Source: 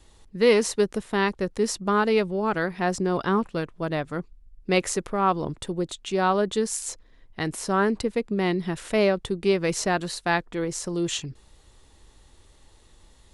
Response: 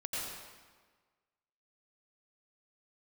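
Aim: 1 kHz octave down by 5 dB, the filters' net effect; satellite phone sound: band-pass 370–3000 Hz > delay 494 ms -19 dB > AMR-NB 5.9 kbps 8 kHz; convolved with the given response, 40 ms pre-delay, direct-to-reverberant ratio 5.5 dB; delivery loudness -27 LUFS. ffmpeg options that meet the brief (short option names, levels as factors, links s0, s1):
-filter_complex "[0:a]equalizer=f=1000:t=o:g=-6.5,asplit=2[s0][s1];[1:a]atrim=start_sample=2205,adelay=40[s2];[s1][s2]afir=irnorm=-1:irlink=0,volume=0.376[s3];[s0][s3]amix=inputs=2:normalize=0,highpass=370,lowpass=3000,aecho=1:1:494:0.112,volume=1.33" -ar 8000 -c:a libopencore_amrnb -b:a 5900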